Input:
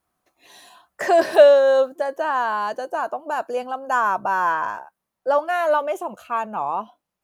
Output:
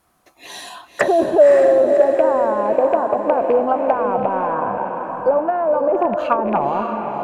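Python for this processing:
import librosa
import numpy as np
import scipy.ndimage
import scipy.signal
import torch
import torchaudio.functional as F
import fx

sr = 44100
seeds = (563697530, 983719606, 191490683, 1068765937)

p1 = fx.rattle_buzz(x, sr, strikes_db=-39.0, level_db=-23.0)
p2 = fx.over_compress(p1, sr, threshold_db=-25.0, ratio=-1.0)
p3 = p1 + F.gain(torch.from_numpy(p2), 1.0).numpy()
p4 = fx.env_lowpass_down(p3, sr, base_hz=520.0, full_db=-14.0)
p5 = fx.echo_diffused(p4, sr, ms=550, feedback_pct=48, wet_db=-5)
y = F.gain(torch.from_numpy(p5), 4.0).numpy()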